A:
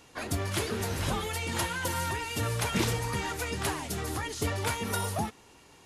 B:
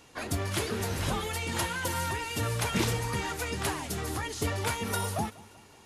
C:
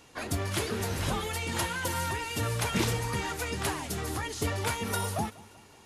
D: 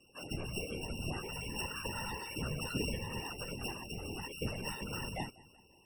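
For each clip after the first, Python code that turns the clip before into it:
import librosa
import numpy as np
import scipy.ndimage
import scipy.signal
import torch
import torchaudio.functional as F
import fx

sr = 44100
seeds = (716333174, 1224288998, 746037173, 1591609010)

y1 = fx.echo_feedback(x, sr, ms=192, feedback_pct=57, wet_db=-22.0)
y2 = y1
y3 = np.r_[np.sort(y2[:len(y2) // 16 * 16].reshape(-1, 16), axis=1).ravel(), y2[len(y2) // 16 * 16:]]
y3 = fx.spec_topn(y3, sr, count=32)
y3 = fx.whisperise(y3, sr, seeds[0])
y3 = y3 * 10.0 ** (-7.5 / 20.0)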